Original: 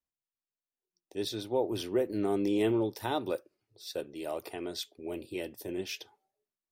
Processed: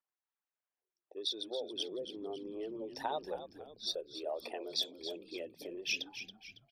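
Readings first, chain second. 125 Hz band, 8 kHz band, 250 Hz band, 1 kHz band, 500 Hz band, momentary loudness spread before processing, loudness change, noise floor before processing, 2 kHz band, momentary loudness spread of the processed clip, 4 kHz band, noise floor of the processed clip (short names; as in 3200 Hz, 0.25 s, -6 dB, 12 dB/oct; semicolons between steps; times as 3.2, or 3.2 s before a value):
-20.0 dB, -2.0 dB, -13.5 dB, -4.5 dB, -8.5 dB, 12 LU, -6.0 dB, under -85 dBFS, -0.5 dB, 9 LU, +3.5 dB, under -85 dBFS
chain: formant sharpening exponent 2; compressor 5:1, threshold -35 dBFS, peak gain reduction 10.5 dB; HPF 750 Hz 12 dB/oct; low-pass opened by the level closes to 1900 Hz, open at -40.5 dBFS; on a send: frequency-shifting echo 0.277 s, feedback 44%, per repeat -81 Hz, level -10.5 dB; on the sum: gain +6.5 dB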